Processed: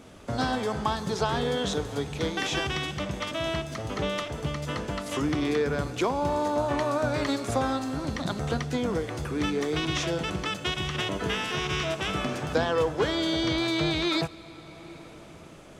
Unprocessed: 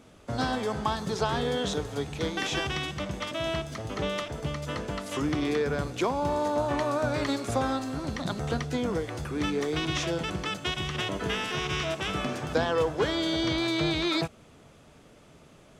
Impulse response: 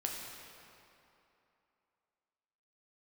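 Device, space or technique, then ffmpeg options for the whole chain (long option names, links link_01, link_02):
ducked reverb: -filter_complex "[0:a]asplit=3[link_01][link_02][link_03];[1:a]atrim=start_sample=2205[link_04];[link_02][link_04]afir=irnorm=-1:irlink=0[link_05];[link_03]apad=whole_len=696687[link_06];[link_05][link_06]sidechaincompress=threshold=-40dB:ratio=8:attack=16:release=700,volume=-1dB[link_07];[link_01][link_07]amix=inputs=2:normalize=0"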